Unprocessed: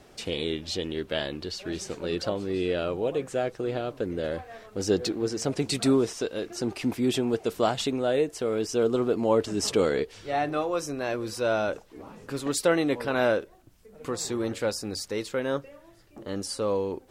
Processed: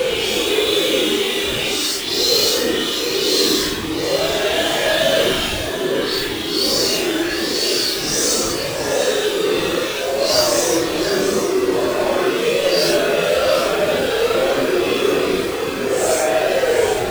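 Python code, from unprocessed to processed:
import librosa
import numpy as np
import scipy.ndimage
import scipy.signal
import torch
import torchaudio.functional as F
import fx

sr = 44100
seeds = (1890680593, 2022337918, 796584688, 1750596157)

p1 = fx.reverse_delay(x, sr, ms=410, wet_db=-2)
p2 = scipy.signal.sosfilt(scipy.signal.butter(2, 380.0, 'highpass', fs=sr, output='sos'), p1)
p3 = fx.high_shelf(p2, sr, hz=2800.0, db=4.5)
p4 = fx.hum_notches(p3, sr, base_hz=50, count=10)
p5 = fx.leveller(p4, sr, passes=5)
p6 = fx.schmitt(p5, sr, flips_db=-24.5)
p7 = p5 + (p6 * librosa.db_to_amplitude(-5.0))
p8 = fx.dispersion(p7, sr, late='highs', ms=97.0, hz=1600.0)
p9 = p8 + fx.echo_single(p8, sr, ms=139, db=-9.0, dry=0)
p10 = fx.paulstretch(p9, sr, seeds[0], factor=5.3, window_s=0.05, from_s=0.36)
y = p10 * librosa.db_to_amplitude(-6.0)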